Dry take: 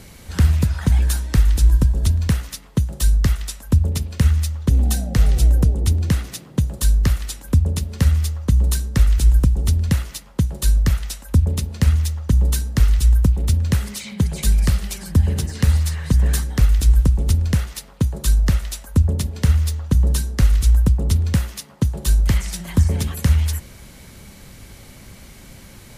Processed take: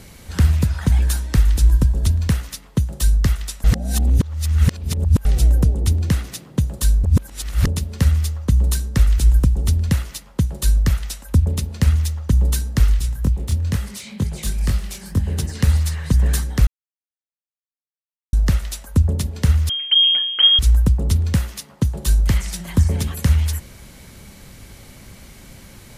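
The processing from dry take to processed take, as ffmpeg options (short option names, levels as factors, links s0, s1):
-filter_complex "[0:a]asplit=3[s0][s1][s2];[s0]afade=t=out:st=12.92:d=0.02[s3];[s1]flanger=delay=19.5:depth=8:speed=2.1,afade=t=in:st=12.92:d=0.02,afade=t=out:st=15.37:d=0.02[s4];[s2]afade=t=in:st=15.37:d=0.02[s5];[s3][s4][s5]amix=inputs=3:normalize=0,asettb=1/sr,asplit=3[s6][s7][s8];[s6]atrim=end=19.694[s9];[s7]atrim=start=19.69:end=20.59,asetpts=PTS-STARTPTS,afade=t=in:d=0.004:c=qsin,afade=t=out:st=0.896:d=0.004:c=qsin,lowpass=f=2800:t=q:w=0.5098,lowpass=f=2800:t=q:w=0.6013,lowpass=f=2800:t=q:w=0.9,lowpass=f=2800:t=q:w=2.563,afreqshift=-3300[s10];[s8]atrim=start=20.586[s11];[s9][s10]acrossfade=d=0.004:c1=hsin:c2=qsin[s12];[s12][s11]acrossfade=d=0.004:c1=qsin:c2=hsin,asplit=7[s13][s14][s15][s16][s17][s18][s19];[s13]atrim=end=3.642[s20];[s14]atrim=start=3.638:end=5.252,asetpts=PTS-STARTPTS,areverse[s21];[s15]atrim=start=5.248:end=7.042[s22];[s16]atrim=start=7.038:end=7.672,asetpts=PTS-STARTPTS,areverse[s23];[s17]atrim=start=7.668:end=16.67,asetpts=PTS-STARTPTS,afade=t=out:st=8.998:d=0.004:c=hsin[s24];[s18]atrim=start=16.67:end=18.33,asetpts=PTS-STARTPTS,volume=0[s25];[s19]atrim=start=18.33,asetpts=PTS-STARTPTS,afade=t=in:d=0.004:c=hsin[s26];[s20][s21]acrossfade=d=0.004:c1=hsin:c2=hsin[s27];[s27][s22]acrossfade=d=0.004:c1=hsin:c2=hsin[s28];[s28][s23]acrossfade=d=0.004:c1=hsin:c2=hsin[s29];[s24][s25][s26]concat=n=3:v=0:a=1[s30];[s29][s30]acrossfade=d=0.004:c1=hsin:c2=hsin"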